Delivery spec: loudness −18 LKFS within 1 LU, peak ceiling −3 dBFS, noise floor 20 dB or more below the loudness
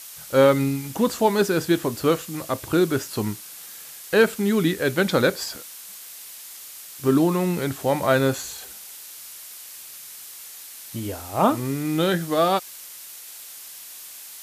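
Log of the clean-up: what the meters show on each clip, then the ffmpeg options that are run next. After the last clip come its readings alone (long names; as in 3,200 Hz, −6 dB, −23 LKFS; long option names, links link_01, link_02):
background noise floor −41 dBFS; target noise floor −43 dBFS; integrated loudness −22.5 LKFS; sample peak −6.0 dBFS; target loudness −18.0 LKFS
→ -af "afftdn=noise_reduction=6:noise_floor=-41"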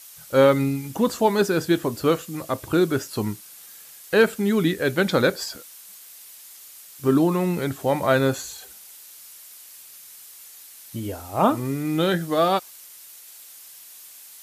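background noise floor −45 dBFS; integrated loudness −22.5 LKFS; sample peak −6.0 dBFS; target loudness −18.0 LKFS
→ -af "volume=4.5dB,alimiter=limit=-3dB:level=0:latency=1"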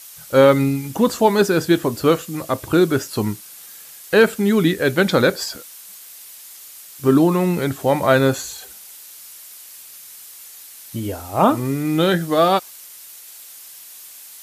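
integrated loudness −18.0 LKFS; sample peak −3.0 dBFS; background noise floor −41 dBFS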